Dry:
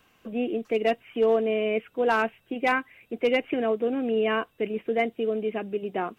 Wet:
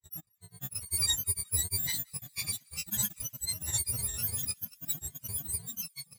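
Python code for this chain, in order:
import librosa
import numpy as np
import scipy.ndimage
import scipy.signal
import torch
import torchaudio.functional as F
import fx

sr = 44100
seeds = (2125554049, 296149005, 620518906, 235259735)

p1 = fx.bit_reversed(x, sr, seeds[0], block=128)
p2 = fx.notch_comb(p1, sr, f0_hz=260.0)
p3 = fx.cheby_harmonics(p2, sr, harmonics=(5,), levels_db=(-19,), full_scale_db=-11.5)
p4 = fx.granulator(p3, sr, seeds[1], grain_ms=100.0, per_s=20.0, spray_ms=431.0, spread_st=7)
p5 = p4 + fx.echo_wet_highpass(p4, sr, ms=177, feedback_pct=76, hz=1400.0, wet_db=-20.5, dry=0)
p6 = fx.spectral_expand(p5, sr, expansion=1.5)
y = F.gain(torch.from_numpy(p6), -4.5).numpy()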